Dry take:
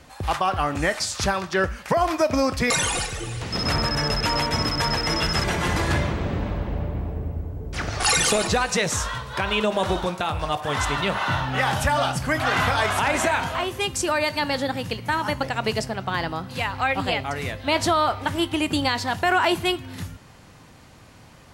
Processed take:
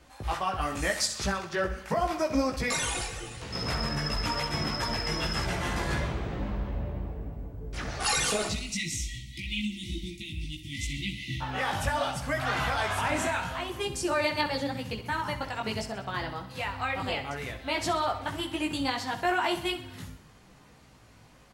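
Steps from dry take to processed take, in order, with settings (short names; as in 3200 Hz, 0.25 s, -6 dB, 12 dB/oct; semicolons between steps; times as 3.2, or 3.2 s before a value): 0.61–1.06 high shelf 4200 Hz +11 dB; 8.51–11.41 spectral delete 350–1900 Hz; chorus voices 4, 0.79 Hz, delay 17 ms, depth 2.9 ms; feedback echo 64 ms, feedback 55%, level -12.5 dB; gain -4.5 dB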